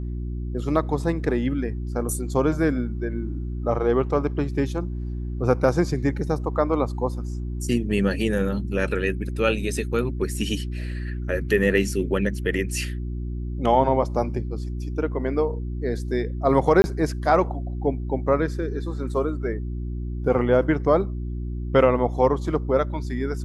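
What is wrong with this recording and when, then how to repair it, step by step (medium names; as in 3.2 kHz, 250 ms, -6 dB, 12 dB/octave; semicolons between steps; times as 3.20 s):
hum 60 Hz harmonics 6 -29 dBFS
16.82–16.84 s: dropout 20 ms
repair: de-hum 60 Hz, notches 6; interpolate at 16.82 s, 20 ms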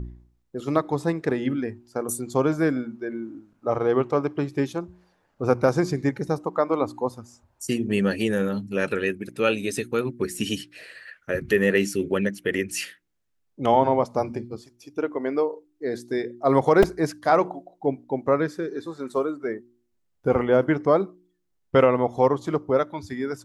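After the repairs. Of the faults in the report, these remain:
nothing left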